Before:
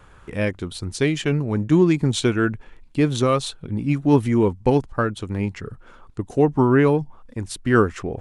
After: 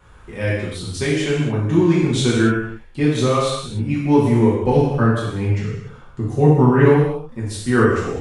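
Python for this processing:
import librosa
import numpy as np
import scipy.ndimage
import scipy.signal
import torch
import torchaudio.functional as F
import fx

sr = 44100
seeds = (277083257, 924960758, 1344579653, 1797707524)

y = fx.peak_eq(x, sr, hz=150.0, db=9.0, octaves=0.78, at=(4.75, 6.85))
y = fx.rev_gated(y, sr, seeds[0], gate_ms=320, shape='falling', drr_db=-7.5)
y = y * librosa.db_to_amplitude(-5.5)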